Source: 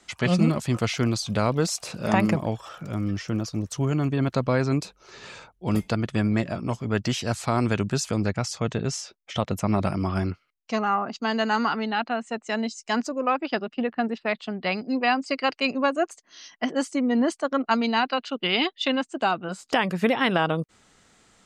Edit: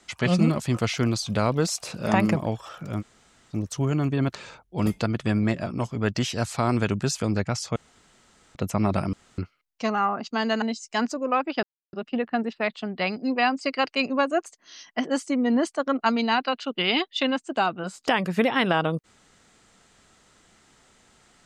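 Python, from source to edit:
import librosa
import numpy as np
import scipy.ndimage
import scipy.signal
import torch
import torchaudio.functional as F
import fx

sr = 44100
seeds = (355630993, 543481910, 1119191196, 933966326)

y = fx.edit(x, sr, fx.room_tone_fill(start_s=3.01, length_s=0.51, crossfade_s=0.04),
    fx.cut(start_s=4.35, length_s=0.89),
    fx.room_tone_fill(start_s=8.65, length_s=0.79),
    fx.room_tone_fill(start_s=10.02, length_s=0.25),
    fx.cut(start_s=11.51, length_s=1.06),
    fx.insert_silence(at_s=13.58, length_s=0.3), tone=tone)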